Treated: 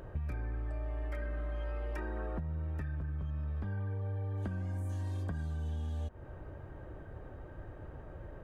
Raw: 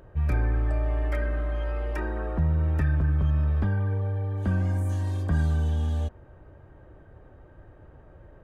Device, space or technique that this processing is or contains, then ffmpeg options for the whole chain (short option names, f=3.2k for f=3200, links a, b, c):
serial compression, leveller first: -af "acompressor=threshold=-26dB:ratio=6,acompressor=threshold=-37dB:ratio=10,volume=3dB"